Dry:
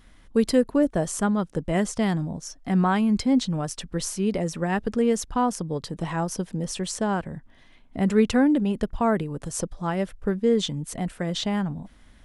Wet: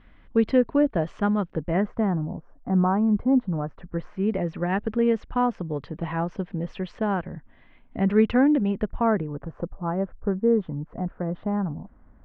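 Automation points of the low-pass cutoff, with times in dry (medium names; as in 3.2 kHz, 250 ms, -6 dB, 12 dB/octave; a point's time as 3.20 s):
low-pass 24 dB/octave
1.48 s 2.9 kHz
2.22 s 1.2 kHz
3.39 s 1.2 kHz
4.53 s 2.7 kHz
8.71 s 2.7 kHz
9.69 s 1.3 kHz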